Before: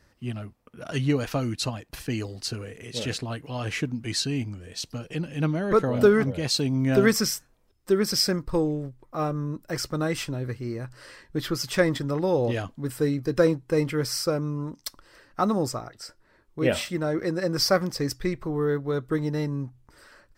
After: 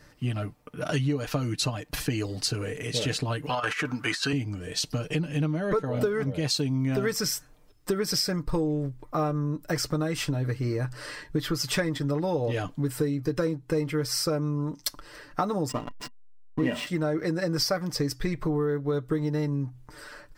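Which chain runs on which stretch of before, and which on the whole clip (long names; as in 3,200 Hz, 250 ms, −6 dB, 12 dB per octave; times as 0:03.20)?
0:03.49–0:04.33: high-pass filter 490 Hz 6 dB per octave + parametric band 1,300 Hz +13 dB 1.1 octaves + compressor whose output falls as the input rises −31 dBFS, ratio −0.5
0:15.69–0:16.87: slack as between gear wheels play −30 dBFS + hollow resonant body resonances 240/1,000/1,900/2,800 Hz, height 15 dB, ringing for 70 ms
whole clip: comb filter 6.7 ms, depth 51%; downward compressor 6 to 1, threshold −31 dBFS; level +6.5 dB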